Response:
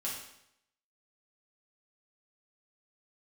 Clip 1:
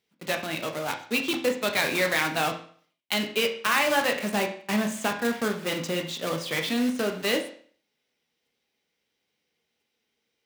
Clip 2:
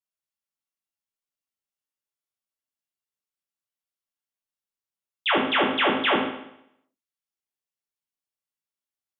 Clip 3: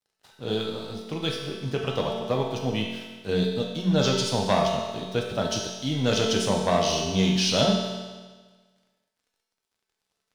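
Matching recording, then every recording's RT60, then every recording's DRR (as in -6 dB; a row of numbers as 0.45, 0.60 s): 2; 0.50, 0.75, 1.4 s; 3.0, -5.5, -1.0 dB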